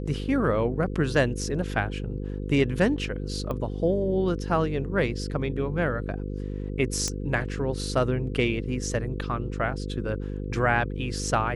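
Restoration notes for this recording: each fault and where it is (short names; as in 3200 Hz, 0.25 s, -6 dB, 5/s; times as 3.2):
buzz 50 Hz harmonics 10 -32 dBFS
3.51 pop -20 dBFS
7.08 pop -14 dBFS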